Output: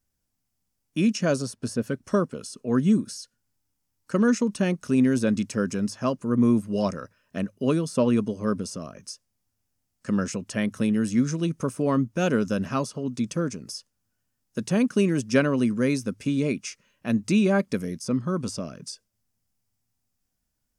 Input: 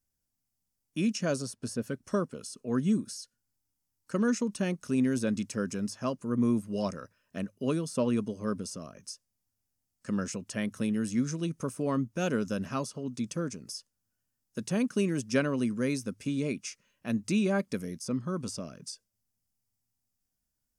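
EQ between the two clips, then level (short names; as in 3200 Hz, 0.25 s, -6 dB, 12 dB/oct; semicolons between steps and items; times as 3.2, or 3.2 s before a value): high shelf 5300 Hz -5 dB; +6.5 dB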